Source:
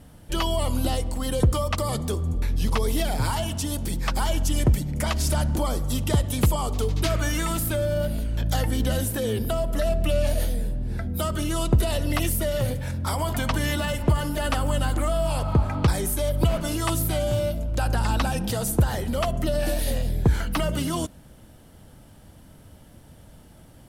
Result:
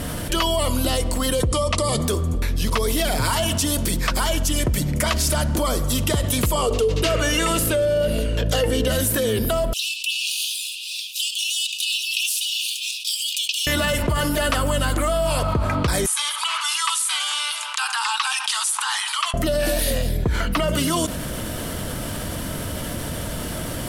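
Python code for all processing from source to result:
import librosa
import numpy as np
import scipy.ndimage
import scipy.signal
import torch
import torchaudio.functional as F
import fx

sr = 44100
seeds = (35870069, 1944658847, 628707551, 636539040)

y = fx.chain(x, sr, fx.steep_lowpass(hz=11000.0, slope=96),
    fx.peak_eq(hz=1500.0, db=-9.5, octaves=0.48), at=(1.44, 2.0))
y = fx.chain(y, sr, fx.lowpass(hz=11000.0, slope=12),
    fx.small_body(hz=(470.0, 2800.0), ring_ms=40, db=15), at=(6.57, 8.88))
y = fx.chain(y, sr, fx.median_filter(points=3),
    fx.cheby1_highpass(hz=2500.0, order=10),
    fx.high_shelf(hz=10000.0, db=-11.5), at=(9.73, 13.67))
y = fx.chain(y, sr, fx.cheby_ripple_highpass(hz=810.0, ripple_db=6),
    fx.resample_bad(factor=2, down='none', up='filtered'), at=(16.06, 19.34))
y = fx.chain(y, sr, fx.high_shelf(hz=5200.0, db=-8.5),
    fx.notch(hz=1600.0, q=14.0), at=(20.17, 20.68))
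y = fx.low_shelf(y, sr, hz=310.0, db=-8.0)
y = fx.notch(y, sr, hz=820.0, q=5.3)
y = fx.env_flatten(y, sr, amount_pct=70)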